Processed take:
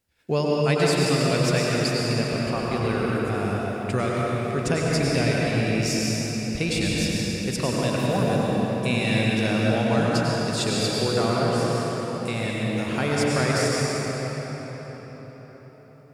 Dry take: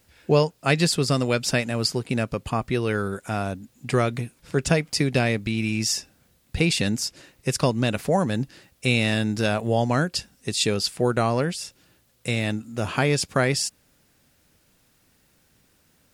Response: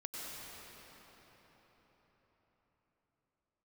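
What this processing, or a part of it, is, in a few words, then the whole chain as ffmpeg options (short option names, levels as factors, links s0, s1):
cathedral: -filter_complex "[0:a]agate=range=0.282:threshold=0.00224:ratio=16:detection=peak[s0];[1:a]atrim=start_sample=2205[s1];[s0][s1]afir=irnorm=-1:irlink=0"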